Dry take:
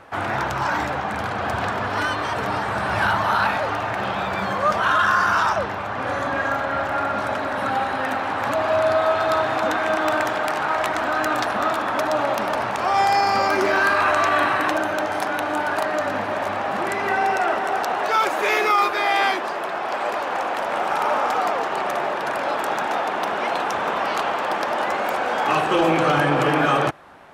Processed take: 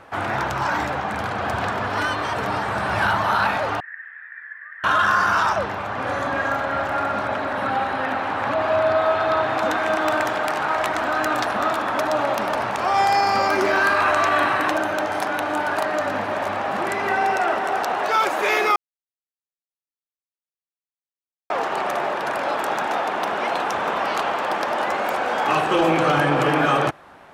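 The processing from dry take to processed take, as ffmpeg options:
-filter_complex "[0:a]asettb=1/sr,asplit=3[a][b][c];[a]atrim=end=3.804[d];[b]atrim=start=3.8:end=4.84,asetpts=PTS-STARTPTS,afade=t=in:d=0.004:c=qsin,afade=t=out:st=1.036:d=0.004:c=qsin,asuperpass=centerf=1800:order=4:qfactor=6.7[e];[c]atrim=start=4.836[f];[d][e]acrossfade=d=0.004:c1=hsin:c2=qsin[g];[g][f]acrossfade=d=0.004:c1=qsin:c2=hsin,asettb=1/sr,asplit=3[h][i][j];[h]atrim=end=7.194[k];[i]atrim=start=7.19:end=9.58,asetpts=PTS-STARTPTS,afade=t=in:d=0.004:c=qsin,afade=t=out:st=2.386:d=0.004:c=qsin,acrossover=split=4400[l][m];[m]acompressor=threshold=-52dB:ratio=4:attack=1:release=60[n];[l][n]amix=inputs=2:normalize=0[o];[j]atrim=start=9.576[p];[k][o]acrossfade=d=0.004:c1=hsin:c2=qsin[q];[q][p]acrossfade=d=0.004:c1=qsin:c2=hsin,asplit=3[r][s][t];[r]atrim=end=18.76,asetpts=PTS-STARTPTS,afade=t=out:st=18.756:d=0.004:c=hsin[u];[s]atrim=start=18.76:end=21.5,asetpts=PTS-STARTPTS,volume=0[v];[t]atrim=start=21.5,asetpts=PTS-STARTPTS,afade=t=in:d=0.004:c=hsin[w];[u][v][w]concat=n=3:v=0:a=1"

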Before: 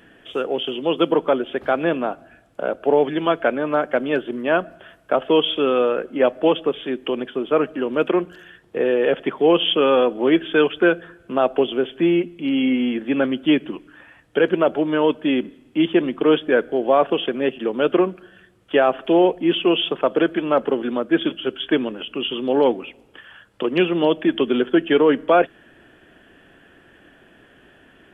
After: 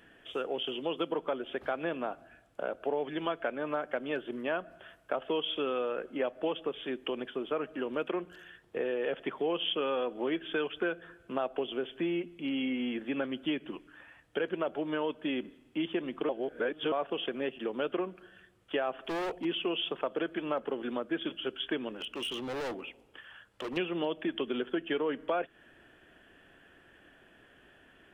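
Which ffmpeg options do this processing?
-filter_complex "[0:a]asettb=1/sr,asplit=3[a][b][c];[a]atrim=end=18.974[d];[b]atrim=start=18.97:end=19.45,asetpts=PTS-STARTPTS,afade=t=in:d=0.004:c=qsin,afade=t=out:st=0.476:d=0.004:c=qsin,volume=22dB,asoftclip=hard,volume=-22dB[e];[c]atrim=start=19.446[f];[d][e]acrossfade=d=0.004:c1=hsin:c2=qsin[g];[g][f]acrossfade=d=0.004:c1=qsin:c2=hsin,asettb=1/sr,asplit=3[h][i][j];[h]atrim=end=21.924[k];[i]atrim=start=21.92:end=23.77,asetpts=PTS-STARTPTS,afade=t=in:d=0.004:c=qsin,afade=t=out:st=1.846:d=0.004:c=qsin,volume=25dB,asoftclip=hard,volume=-25dB[l];[j]atrim=start=23.766[m];[k][l]acrossfade=d=0.004:c1=hsin:c2=qsin[n];[n][m]acrossfade=d=0.004:c1=qsin:c2=hsin,asplit=3[o][p][q];[o]atrim=end=16.292[r];[p]atrim=start=16.288:end=16.922,asetpts=PTS-STARTPTS,areverse[s];[q]atrim=start=16.918[t];[r][s]acrossfade=d=0.004:c1=hsin:c2=hsin[u];[u][t]acrossfade=d=0.004:c1=hsin:c2=hsin,equalizer=f=220:w=0.55:g=-4,acompressor=threshold=-23dB:ratio=3,volume=-7dB"

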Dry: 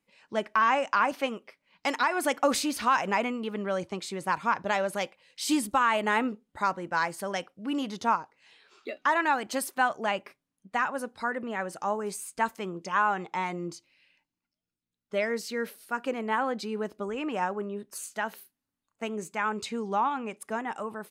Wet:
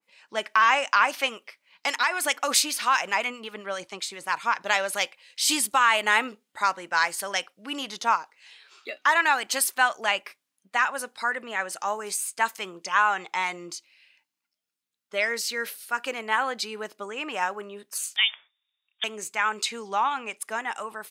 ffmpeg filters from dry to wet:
-filter_complex "[0:a]asettb=1/sr,asplit=3[a][b][c];[a]atrim=end=1.864[d];[b]atrim=start=1.86:end=4.61,asetpts=PTS-STARTPTS,afade=t=in:d=0.004:c=qsin,afade=t=out:st=2.746:d=0.004:c=qsin,acrossover=split=1400[e][f];[e]aeval=exprs='val(0)*(1-0.5/2+0.5/2*cos(2*PI*7.6*n/s))':c=same[g];[f]aeval=exprs='val(0)*(1-0.5/2-0.5/2*cos(2*PI*7.6*n/s))':c=same[h];[g][h]amix=inputs=2:normalize=0[i];[c]atrim=start=4.606[j];[d][i]acrossfade=d=0.004:c1=hsin:c2=qsin[k];[k][j]acrossfade=d=0.004:c1=qsin:c2=hsin,asettb=1/sr,asplit=3[l][m][n];[l]atrim=end=18.164[o];[m]atrim=start=18.16:end=19.04,asetpts=PTS-STARTPTS,afade=t=in:d=0.004:c=qsin,afade=t=out:st=0.876:d=0.004:c=qsin,lowpass=f=3.2k:t=q:w=0.5098,lowpass=f=3.2k:t=q:w=0.6013,lowpass=f=3.2k:t=q:w=0.9,lowpass=f=3.2k:t=q:w=2.563,afreqshift=-3800[p];[n]atrim=start=19.036[q];[o][p]acrossfade=d=0.004:c1=hsin:c2=qsin[r];[r][q]acrossfade=d=0.004:c1=qsin:c2=hsin,highpass=f=1.2k:p=1,adynamicequalizer=threshold=0.00794:dfrequency=1700:dqfactor=0.7:tfrequency=1700:tqfactor=0.7:attack=5:release=100:ratio=0.375:range=2.5:mode=boostabove:tftype=highshelf,volume=6dB"

